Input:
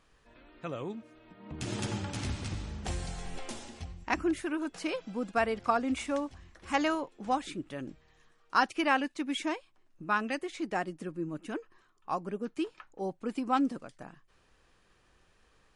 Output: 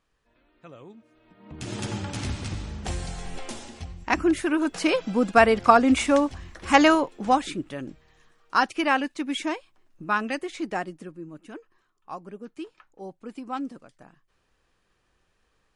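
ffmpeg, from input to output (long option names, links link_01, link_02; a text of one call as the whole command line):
ffmpeg -i in.wav -af "volume=12dB,afade=type=in:start_time=0.93:duration=1.17:silence=0.237137,afade=type=in:start_time=3.87:duration=1.15:silence=0.421697,afade=type=out:start_time=6.9:duration=0.91:silence=0.421697,afade=type=out:start_time=10.63:duration=0.58:silence=0.375837" out.wav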